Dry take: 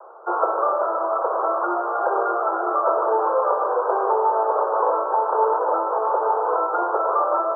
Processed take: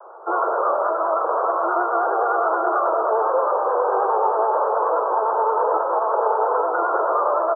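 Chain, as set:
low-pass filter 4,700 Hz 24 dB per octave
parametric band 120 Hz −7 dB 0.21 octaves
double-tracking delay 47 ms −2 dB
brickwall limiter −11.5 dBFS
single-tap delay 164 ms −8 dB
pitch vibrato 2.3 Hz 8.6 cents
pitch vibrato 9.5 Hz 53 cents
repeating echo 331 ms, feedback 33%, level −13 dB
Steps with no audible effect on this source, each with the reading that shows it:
low-pass filter 4,700 Hz: nothing at its input above 1,600 Hz
parametric band 120 Hz: nothing at its input below 320 Hz

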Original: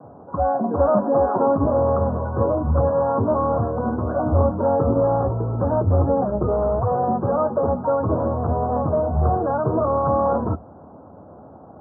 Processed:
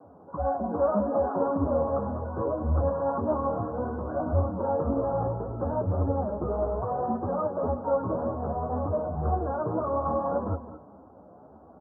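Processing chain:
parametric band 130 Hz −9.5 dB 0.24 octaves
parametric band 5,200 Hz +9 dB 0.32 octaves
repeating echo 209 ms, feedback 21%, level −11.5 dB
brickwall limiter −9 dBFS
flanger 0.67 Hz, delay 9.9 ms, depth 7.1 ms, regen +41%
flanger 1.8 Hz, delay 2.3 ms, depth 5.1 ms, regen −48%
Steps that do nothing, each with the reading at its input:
parametric band 5,200 Hz: nothing at its input above 1,400 Hz

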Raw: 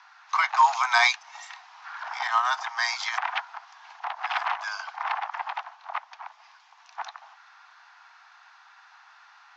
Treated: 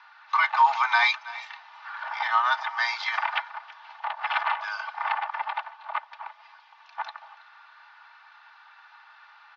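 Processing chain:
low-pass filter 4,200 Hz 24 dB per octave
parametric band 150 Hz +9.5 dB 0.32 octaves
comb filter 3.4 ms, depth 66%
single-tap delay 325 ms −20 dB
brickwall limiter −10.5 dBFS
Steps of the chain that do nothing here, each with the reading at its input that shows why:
parametric band 150 Hz: nothing at its input below 570 Hz

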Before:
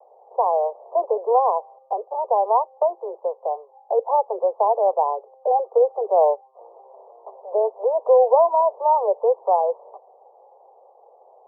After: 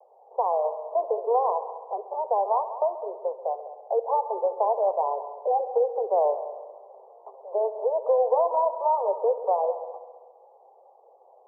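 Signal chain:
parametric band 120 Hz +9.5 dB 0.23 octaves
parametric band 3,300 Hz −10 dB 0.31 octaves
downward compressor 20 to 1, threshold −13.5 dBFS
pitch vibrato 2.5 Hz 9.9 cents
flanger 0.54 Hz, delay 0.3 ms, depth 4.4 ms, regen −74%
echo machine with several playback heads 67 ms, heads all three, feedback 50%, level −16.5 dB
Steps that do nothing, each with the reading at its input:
parametric band 120 Hz: nothing at its input below 360 Hz
parametric band 3,300 Hz: nothing at its input above 1,200 Hz

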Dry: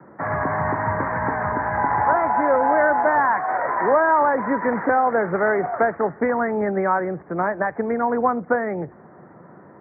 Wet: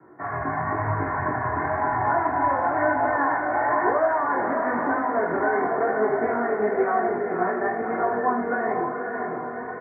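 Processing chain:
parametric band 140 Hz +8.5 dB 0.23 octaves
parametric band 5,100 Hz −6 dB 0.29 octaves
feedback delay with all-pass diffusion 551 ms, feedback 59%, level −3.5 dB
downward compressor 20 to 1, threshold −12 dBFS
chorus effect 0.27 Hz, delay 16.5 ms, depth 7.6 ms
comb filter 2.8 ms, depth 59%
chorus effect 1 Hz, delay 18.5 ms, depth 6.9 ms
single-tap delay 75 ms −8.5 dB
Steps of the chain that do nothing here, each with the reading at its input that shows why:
parametric band 5,100 Hz: nothing at its input above 2,200 Hz

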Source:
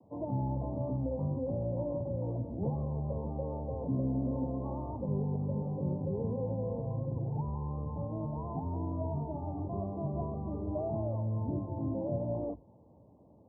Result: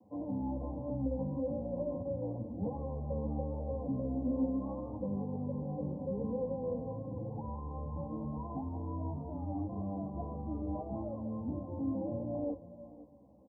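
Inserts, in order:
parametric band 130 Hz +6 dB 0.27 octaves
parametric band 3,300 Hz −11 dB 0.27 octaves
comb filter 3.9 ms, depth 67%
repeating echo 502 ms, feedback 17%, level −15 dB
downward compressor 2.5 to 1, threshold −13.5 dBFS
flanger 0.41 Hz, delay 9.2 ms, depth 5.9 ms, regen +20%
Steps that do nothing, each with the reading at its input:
parametric band 3,300 Hz: nothing at its input above 1,100 Hz
downward compressor, threshold −13.5 dBFS: peak of its input −20.5 dBFS

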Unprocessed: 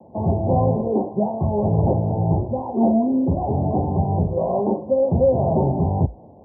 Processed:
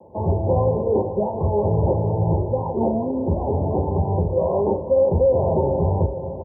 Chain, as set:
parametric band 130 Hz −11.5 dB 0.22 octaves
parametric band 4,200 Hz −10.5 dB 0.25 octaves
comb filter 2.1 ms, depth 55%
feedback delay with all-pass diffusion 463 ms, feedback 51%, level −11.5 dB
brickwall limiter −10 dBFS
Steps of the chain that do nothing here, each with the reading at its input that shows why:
parametric band 4,200 Hz: nothing at its input above 1,000 Hz

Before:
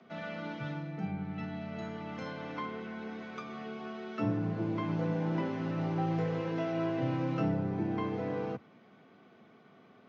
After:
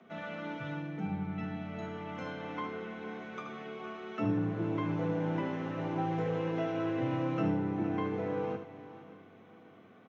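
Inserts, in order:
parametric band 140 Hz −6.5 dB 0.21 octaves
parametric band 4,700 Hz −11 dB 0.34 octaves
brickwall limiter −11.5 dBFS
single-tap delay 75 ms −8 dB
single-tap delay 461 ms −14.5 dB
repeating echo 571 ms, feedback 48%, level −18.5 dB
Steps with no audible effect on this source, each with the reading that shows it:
brickwall limiter −11.5 dBFS: peak of its input −20.0 dBFS

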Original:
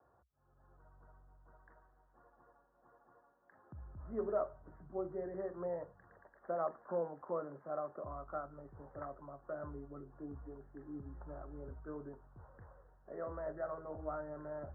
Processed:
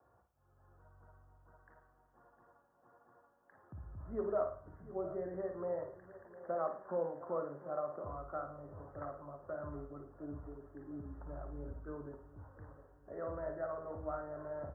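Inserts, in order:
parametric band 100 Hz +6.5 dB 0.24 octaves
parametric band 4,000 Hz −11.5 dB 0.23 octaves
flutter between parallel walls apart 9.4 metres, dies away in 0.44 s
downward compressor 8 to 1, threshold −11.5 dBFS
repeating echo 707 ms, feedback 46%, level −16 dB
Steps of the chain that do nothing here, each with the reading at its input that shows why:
parametric band 4,000 Hz: nothing at its input above 1,500 Hz
downward compressor, threshold −11.5 dBFS: peak of its input −24.5 dBFS

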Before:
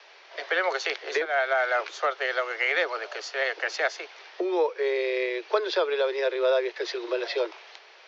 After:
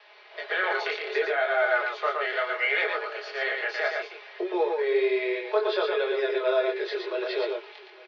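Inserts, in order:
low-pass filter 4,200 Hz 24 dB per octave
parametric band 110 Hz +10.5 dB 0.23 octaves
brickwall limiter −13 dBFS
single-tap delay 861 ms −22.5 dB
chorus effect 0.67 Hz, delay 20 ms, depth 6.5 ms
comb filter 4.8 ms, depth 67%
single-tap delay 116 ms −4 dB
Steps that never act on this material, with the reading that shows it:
parametric band 110 Hz: nothing at its input below 300 Hz

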